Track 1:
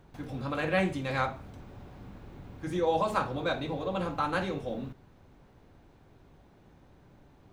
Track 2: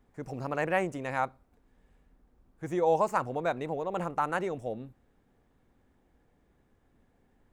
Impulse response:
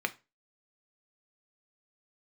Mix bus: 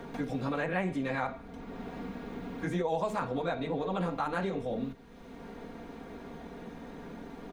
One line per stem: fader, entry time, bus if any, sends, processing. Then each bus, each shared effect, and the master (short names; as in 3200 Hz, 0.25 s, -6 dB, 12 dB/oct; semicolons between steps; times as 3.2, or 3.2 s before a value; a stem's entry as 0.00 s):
-8.5 dB, 0.00 s, send -9 dB, bell 390 Hz +4.5 dB 1.6 oct; comb 4.3 ms, depth 82%; limiter -21.5 dBFS, peak gain reduction 10.5 dB
-4.5 dB, 20 ms, polarity flipped, no send, low shelf 83 Hz +11 dB; vibrato 13 Hz 61 cents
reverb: on, RT60 0.30 s, pre-delay 3 ms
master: high shelf 9100 Hz -4.5 dB; three-band squash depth 70%